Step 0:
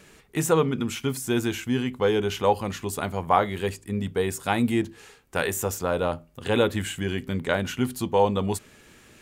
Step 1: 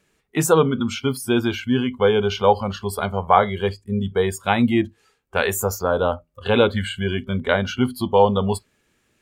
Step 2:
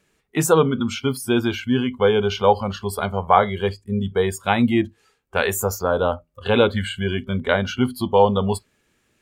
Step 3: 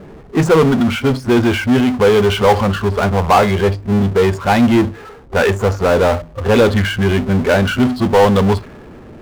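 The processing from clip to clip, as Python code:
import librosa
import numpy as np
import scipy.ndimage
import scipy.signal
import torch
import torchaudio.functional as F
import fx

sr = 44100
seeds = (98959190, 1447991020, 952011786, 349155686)

y1 = fx.noise_reduce_blind(x, sr, reduce_db=19)
y1 = F.gain(torch.from_numpy(y1), 5.5).numpy()
y2 = y1
y3 = fx.high_shelf(y2, sr, hz=4200.0, db=-11.5)
y3 = fx.env_lowpass(y3, sr, base_hz=740.0, full_db=-11.5)
y3 = fx.power_curve(y3, sr, exponent=0.5)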